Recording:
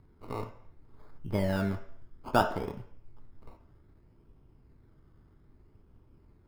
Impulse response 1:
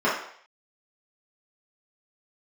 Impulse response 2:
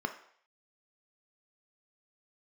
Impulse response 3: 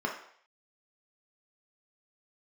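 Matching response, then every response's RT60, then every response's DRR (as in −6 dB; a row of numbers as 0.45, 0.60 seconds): 2; 0.60, 0.60, 0.60 seconds; −10.0, 5.5, −1.0 decibels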